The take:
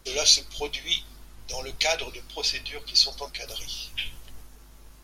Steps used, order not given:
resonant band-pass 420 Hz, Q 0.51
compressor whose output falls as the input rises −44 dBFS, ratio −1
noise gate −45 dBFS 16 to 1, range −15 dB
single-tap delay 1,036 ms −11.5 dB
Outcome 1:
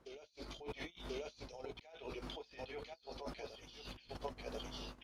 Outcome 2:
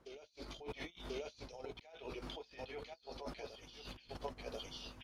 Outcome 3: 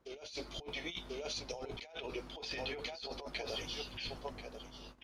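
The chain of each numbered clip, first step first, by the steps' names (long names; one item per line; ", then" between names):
single-tap delay, then noise gate, then compressor whose output falls as the input rises, then resonant band-pass
noise gate, then single-tap delay, then compressor whose output falls as the input rises, then resonant band-pass
single-tap delay, then noise gate, then resonant band-pass, then compressor whose output falls as the input rises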